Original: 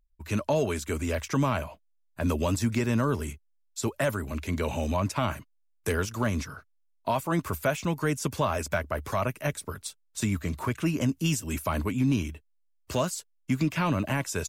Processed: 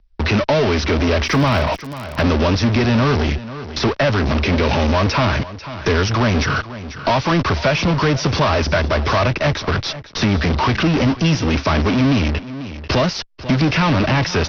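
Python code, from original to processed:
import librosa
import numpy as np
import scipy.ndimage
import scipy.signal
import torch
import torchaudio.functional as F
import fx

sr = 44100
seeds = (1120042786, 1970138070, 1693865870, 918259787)

p1 = fx.fuzz(x, sr, gain_db=54.0, gate_db=-55.0)
p2 = x + (p1 * librosa.db_to_amplitude(-9.0))
p3 = scipy.signal.sosfilt(scipy.signal.butter(16, 5700.0, 'lowpass', fs=sr, output='sos'), p2)
p4 = p3 + 10.0 ** (-18.0 / 20.0) * np.pad(p3, (int(491 * sr / 1000.0), 0))[:len(p3)]
p5 = fx.dmg_crackle(p4, sr, seeds[0], per_s=fx.line((1.24, 150.0), (2.2, 31.0)), level_db=-29.0, at=(1.24, 2.2), fade=0.02)
p6 = fx.band_squash(p5, sr, depth_pct=40)
y = p6 * librosa.db_to_amplitude(3.5)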